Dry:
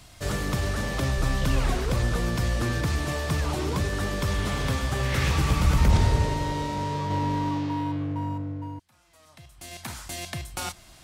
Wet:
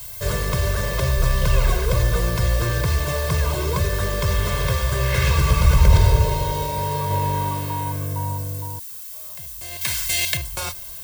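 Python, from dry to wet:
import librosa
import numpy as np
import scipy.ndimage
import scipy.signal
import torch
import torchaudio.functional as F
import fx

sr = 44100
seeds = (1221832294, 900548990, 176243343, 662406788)

y = fx.dmg_noise_colour(x, sr, seeds[0], colour='violet', level_db=-40.0)
y = fx.high_shelf_res(y, sr, hz=1600.0, db=8.5, q=1.5, at=(9.81, 10.37))
y = y + 0.98 * np.pad(y, (int(1.9 * sr / 1000.0), 0))[:len(y)]
y = y * 10.0 ** (1.5 / 20.0)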